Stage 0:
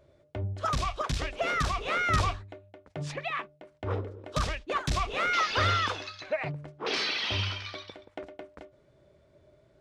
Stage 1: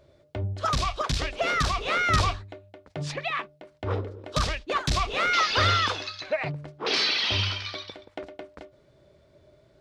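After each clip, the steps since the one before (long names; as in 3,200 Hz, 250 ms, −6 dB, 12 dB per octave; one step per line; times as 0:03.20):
parametric band 4,400 Hz +5 dB 0.86 octaves
level +3 dB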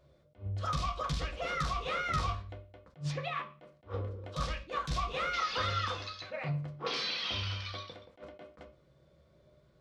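downward compressor 2 to 1, threshold −28 dBFS, peak gain reduction 6.5 dB
on a send at −1 dB: convolution reverb RT60 0.40 s, pre-delay 3 ms
on the sum: level that may rise only so fast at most 260 dB per second
level −8.5 dB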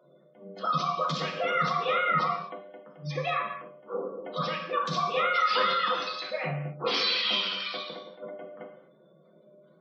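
Butterworth high-pass 160 Hz 72 dB per octave
gate on every frequency bin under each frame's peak −20 dB strong
reverb whose tail is shaped and stops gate 280 ms falling, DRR 2.5 dB
level +6.5 dB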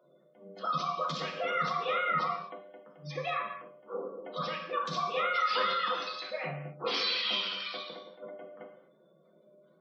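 parametric band 96 Hz −8 dB 1.2 octaves
level −4 dB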